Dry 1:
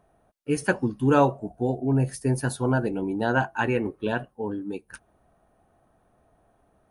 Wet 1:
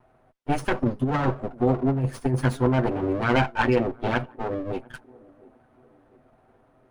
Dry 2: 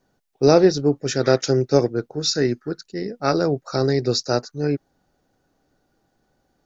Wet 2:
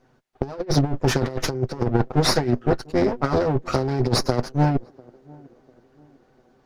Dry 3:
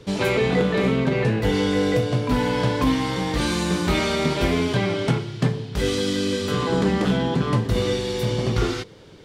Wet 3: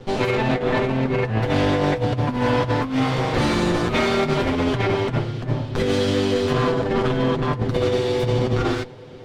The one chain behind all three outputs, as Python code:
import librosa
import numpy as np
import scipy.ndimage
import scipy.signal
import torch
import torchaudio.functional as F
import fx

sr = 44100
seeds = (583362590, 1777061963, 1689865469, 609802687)

y = fx.lower_of_two(x, sr, delay_ms=7.9)
y = fx.lowpass(y, sr, hz=2200.0, slope=6)
y = fx.over_compress(y, sr, threshold_db=-24.0, ratio=-0.5)
y = fx.echo_banded(y, sr, ms=697, feedback_pct=48, hz=330.0, wet_db=-23.0)
y = y * 10.0 ** (4.5 / 20.0)